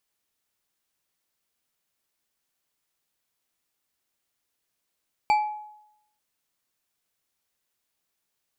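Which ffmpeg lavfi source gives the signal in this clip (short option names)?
-f lavfi -i "aevalsrc='0.168*pow(10,-3*t/0.82)*sin(2*PI*846*t)+0.0596*pow(10,-3*t/0.403)*sin(2*PI*2332.4*t)+0.0211*pow(10,-3*t/0.252)*sin(2*PI*4571.8*t)+0.0075*pow(10,-3*t/0.177)*sin(2*PI*7557.3*t)+0.00266*pow(10,-3*t/0.134)*sin(2*PI*11285.6*t)':d=0.89:s=44100"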